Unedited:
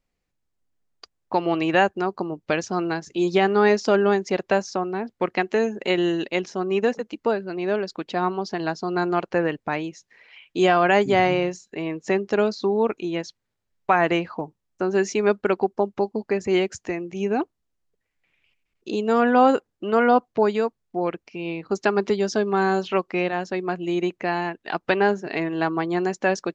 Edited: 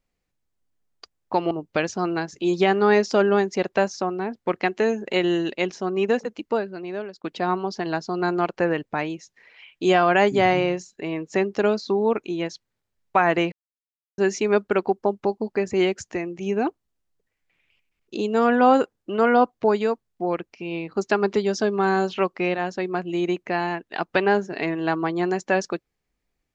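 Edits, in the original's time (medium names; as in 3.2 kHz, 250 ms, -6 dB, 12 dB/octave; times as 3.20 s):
1.51–2.25 s: delete
7.16–7.98 s: fade out, to -15 dB
14.26–14.92 s: mute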